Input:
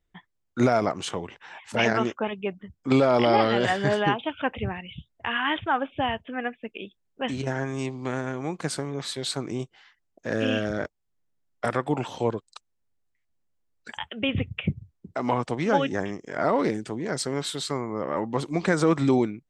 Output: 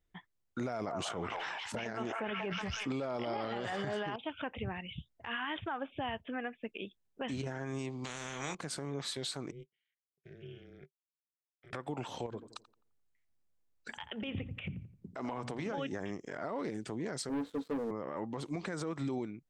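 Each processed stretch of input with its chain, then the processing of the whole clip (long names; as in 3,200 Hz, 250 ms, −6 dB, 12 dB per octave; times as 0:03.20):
0:00.69–0:04.16: echo through a band-pass that steps 185 ms, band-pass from 930 Hz, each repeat 0.7 octaves, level −7.5 dB + level that may fall only so fast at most 24 dB per second
0:08.04–0:08.55: parametric band 150 Hz +13.5 dB 1.6 octaves + double-tracking delay 28 ms −10.5 dB + every bin compressed towards the loudest bin 4 to 1
0:09.51–0:11.73: output level in coarse steps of 17 dB + formant filter i + ring modulation 120 Hz
0:12.26–0:15.78: mains-hum notches 60/120/180/240/300 Hz + downward compressor, threshold −27 dBFS + feedback echo with a low-pass in the loop 86 ms, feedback 39%, low-pass 1,800 Hz, level −14.5 dB
0:17.29–0:17.91: pair of resonant band-passes 360 Hz, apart 0.71 octaves + double-tracking delay 18 ms −8.5 dB + leveller curve on the samples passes 3
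whole clip: downward compressor 2.5 to 1, threshold −31 dBFS; brickwall limiter −24.5 dBFS; level −3.5 dB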